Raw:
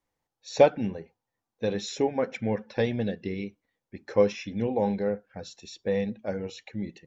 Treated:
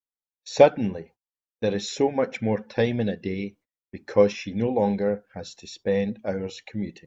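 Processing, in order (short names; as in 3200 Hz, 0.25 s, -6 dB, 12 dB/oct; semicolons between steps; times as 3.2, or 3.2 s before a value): gate -53 dBFS, range -29 dB; gain +3.5 dB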